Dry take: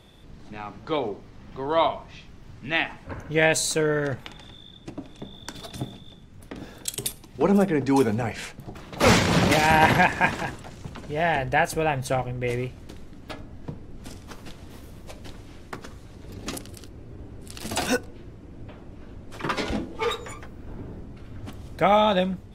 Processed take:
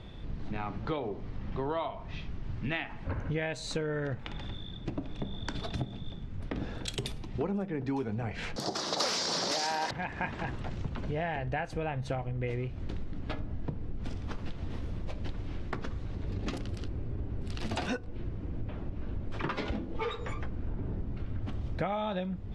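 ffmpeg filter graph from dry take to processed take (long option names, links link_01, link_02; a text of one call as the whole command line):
ffmpeg -i in.wav -filter_complex "[0:a]asettb=1/sr,asplit=3[link_01][link_02][link_03];[link_01]atrim=end=8.564[link_04];[link_02]atrim=start=8.56:end=9.91,asetpts=PTS-STARTPTS,afade=type=in:duration=0.004:curve=qsin,afade=type=out:start_time=1.346:duration=0.004:curve=qsin,highshelf=frequency=3600:width_type=q:width=3:gain=12.5,aeval=exprs='1.33*sin(PI/2*3.16*val(0)/1.33)':channel_layout=same,highpass=440[link_05];[link_03]atrim=start=9.906[link_06];[link_04][link_05]acrossfade=duration=0.004:curve1=hsin:curve2=qsin[link_07];[link_07][link_06]acrossfade=duration=0.004:curve1=qsin:curve2=hsin,lowpass=3900,lowshelf=frequency=150:gain=9,acompressor=threshold=-32dB:ratio=10,volume=2dB" out.wav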